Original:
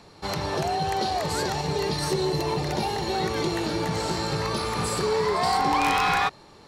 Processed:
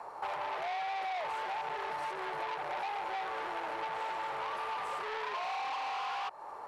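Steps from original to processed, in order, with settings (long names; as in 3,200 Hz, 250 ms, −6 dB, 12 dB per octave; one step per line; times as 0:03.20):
variable-slope delta modulation 64 kbit/s
drawn EQ curve 210 Hz 0 dB, 950 Hz +9 dB, 3,900 Hz −20 dB, 9,900 Hz +3 dB
soft clipping −29 dBFS, distortion −5 dB
three-way crossover with the lows and the highs turned down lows −23 dB, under 570 Hz, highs −22 dB, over 5,100 Hz
downward compressor 6 to 1, threshold −40 dBFS, peak gain reduction 10.5 dB
level +5 dB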